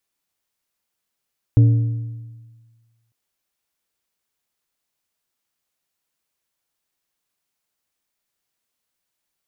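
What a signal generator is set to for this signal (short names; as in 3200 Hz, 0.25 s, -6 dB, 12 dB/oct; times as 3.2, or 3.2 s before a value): metal hit plate, lowest mode 115 Hz, modes 5, decay 1.51 s, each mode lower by 12 dB, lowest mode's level -7 dB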